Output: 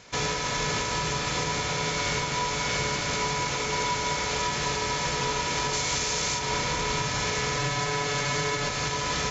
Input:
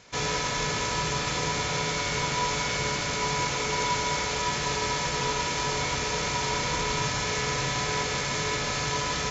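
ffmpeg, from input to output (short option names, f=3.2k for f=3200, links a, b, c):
-filter_complex "[0:a]asettb=1/sr,asplit=3[a][b][c];[a]atrim=end=5.734[d];[b]atrim=start=5.73:end=6.39,asetpts=PTS-STARTPTS,afade=t=in:d=0.004:c=qsin,afade=t=out:st=0.656:d=0.004:c=qsin,highshelf=f=4.7k:g=11.5[e];[c]atrim=start=6.386[f];[d][e]acrossfade=d=0.004:c1=hsin:c2=qsin[g];[g][f]acrossfade=d=0.004:c1=qsin:c2=hsin,asettb=1/sr,asplit=3[h][i][j];[h]atrim=end=7.574[k];[i]atrim=start=7.57:end=8.69,asetpts=PTS-STARTPTS,afade=t=in:d=0.004:c=qsin,afade=t=out:st=1.116:d=0.004:c=qsin,aecho=1:1:6.9:0.86,atrim=end_sample=49392[l];[j]atrim=start=8.686[m];[k][l]acrossfade=d=0.004:c1=hsin:c2=qsin[n];[n][m]acrossfade=d=0.004:c1=qsin:c2=hsin,alimiter=limit=-20.5dB:level=0:latency=1:release=296,volume=3dB"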